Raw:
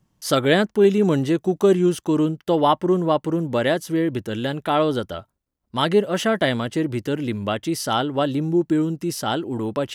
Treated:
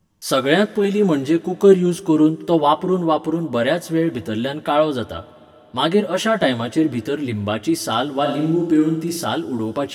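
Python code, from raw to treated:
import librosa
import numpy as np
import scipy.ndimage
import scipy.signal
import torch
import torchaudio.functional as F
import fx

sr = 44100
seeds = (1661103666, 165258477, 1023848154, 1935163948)

y = fx.chorus_voices(x, sr, voices=4, hz=0.6, base_ms=11, depth_ms=1.9, mix_pct=40)
y = fx.room_flutter(y, sr, wall_m=9.6, rt60_s=0.6, at=(8.24, 9.23), fade=0.02)
y = fx.rev_double_slope(y, sr, seeds[0], early_s=0.21, late_s=4.1, knee_db=-19, drr_db=14.5)
y = y * 10.0 ** (4.5 / 20.0)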